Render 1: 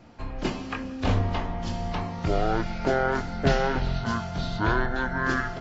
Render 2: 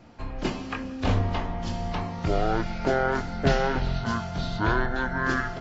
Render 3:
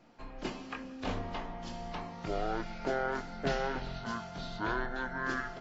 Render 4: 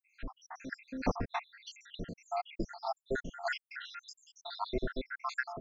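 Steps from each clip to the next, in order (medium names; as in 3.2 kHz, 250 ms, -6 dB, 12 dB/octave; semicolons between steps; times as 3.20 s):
no audible change
peaking EQ 72 Hz -14.5 dB 1.5 oct; trim -8 dB
random holes in the spectrogram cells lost 84%; trim +6.5 dB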